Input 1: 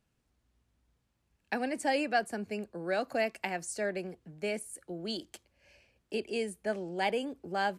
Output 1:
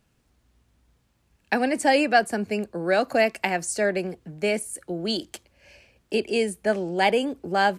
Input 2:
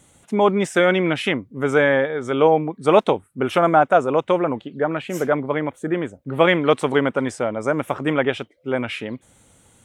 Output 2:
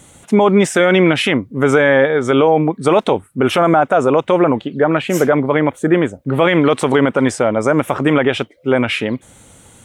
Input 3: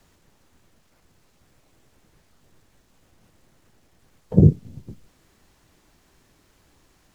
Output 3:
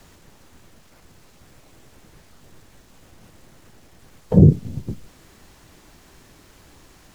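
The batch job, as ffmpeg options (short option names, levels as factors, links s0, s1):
-af "alimiter=level_in=3.76:limit=0.891:release=50:level=0:latency=1,volume=0.841"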